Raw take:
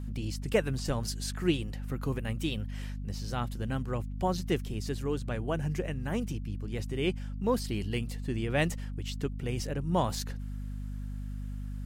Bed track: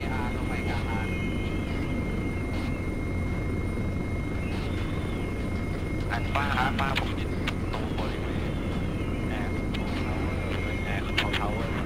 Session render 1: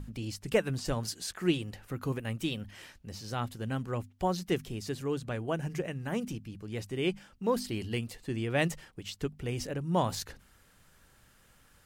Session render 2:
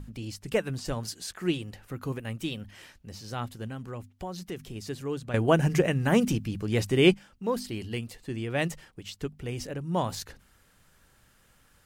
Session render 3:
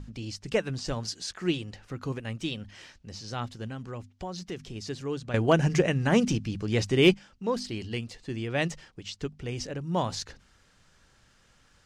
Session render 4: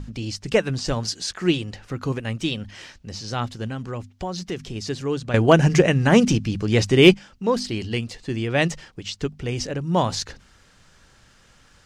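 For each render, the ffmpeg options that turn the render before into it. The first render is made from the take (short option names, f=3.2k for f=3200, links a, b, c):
-af "bandreject=f=50:t=h:w=6,bandreject=f=100:t=h:w=6,bandreject=f=150:t=h:w=6,bandreject=f=200:t=h:w=6,bandreject=f=250:t=h:w=6"
-filter_complex "[0:a]asettb=1/sr,asplit=3[a][b][c];[a]atrim=end=3.674[d];[b]atrim=start=3.67:end=4.76,asetpts=PTS-STARTPTS,afade=t=in:d=0.004:c=qsin,afade=t=out:st=1.086:d=0.004:c=qsin,acompressor=threshold=-35dB:ratio=2.5:attack=3.2:release=140:knee=1:detection=peak[e];[c]atrim=start=4.756[f];[d][e]acrossfade=d=0.004:c1=hsin:c2=qsin[g];[g][f]acrossfade=d=0.004:c1=qsin:c2=hsin,asplit=3[h][i][j];[h]atrim=end=5.342[k];[i]atrim=start=5.338:end=7.142,asetpts=PTS-STARTPTS,volume=11dB[l];[j]atrim=start=7.138[m];[k][l]acrossfade=d=0.004:c1=hsin:c2=hsin[n];[n][m]acrossfade=d=0.004:c1=hsin:c2=hsin"
-af "lowpass=f=5.9k:t=q:w=1.5,asoftclip=type=hard:threshold=-11dB"
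-af "volume=7.5dB"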